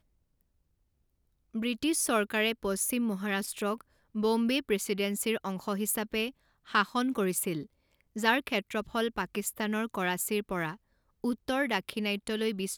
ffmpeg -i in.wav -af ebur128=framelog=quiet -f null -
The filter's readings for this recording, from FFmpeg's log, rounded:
Integrated loudness:
  I:         -30.9 LUFS
  Threshold: -41.0 LUFS
Loudness range:
  LRA:         2.2 LU
  Threshold: -51.2 LUFS
  LRA low:   -32.3 LUFS
  LRA high:  -30.1 LUFS